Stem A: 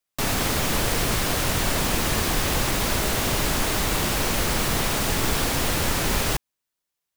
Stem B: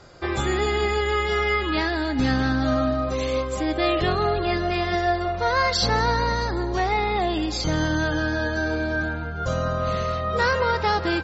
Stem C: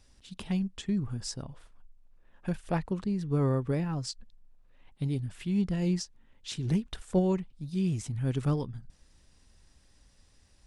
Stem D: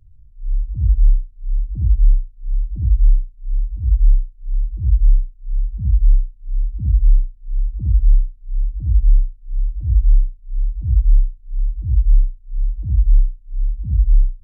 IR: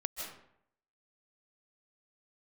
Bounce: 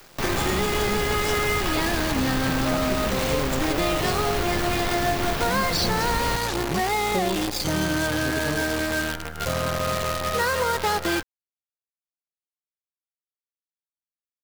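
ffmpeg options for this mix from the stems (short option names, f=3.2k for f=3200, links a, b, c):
-filter_complex "[0:a]equalizer=f=9.9k:t=o:w=1.5:g=-12.5,acompressor=mode=upward:threshold=-31dB:ratio=2.5,volume=-1dB[a];[1:a]highpass=f=110:p=1,acrusher=bits=5:dc=4:mix=0:aa=0.000001,volume=0.5dB[b];[2:a]highpass=210,volume=3dB[c];[a][b][c]amix=inputs=3:normalize=0,acompressor=threshold=-19dB:ratio=6"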